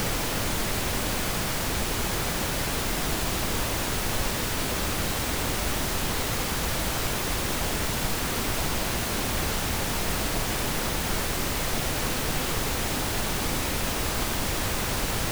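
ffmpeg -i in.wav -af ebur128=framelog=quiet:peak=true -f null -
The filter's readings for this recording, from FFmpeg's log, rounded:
Integrated loudness:
  I:         -26.9 LUFS
  Threshold: -36.9 LUFS
Loudness range:
  LRA:         0.0 LU
  Threshold: -46.9 LUFS
  LRA low:   -26.9 LUFS
  LRA high:  -26.9 LUFS
True peak:
  Peak:      -13.3 dBFS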